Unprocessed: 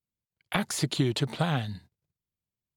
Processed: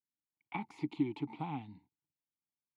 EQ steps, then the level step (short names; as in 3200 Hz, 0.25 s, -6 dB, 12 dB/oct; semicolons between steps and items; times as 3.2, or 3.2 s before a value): vowel filter u; bell 320 Hz -6.5 dB 1.1 oct; high shelf 2500 Hz -11 dB; +6.0 dB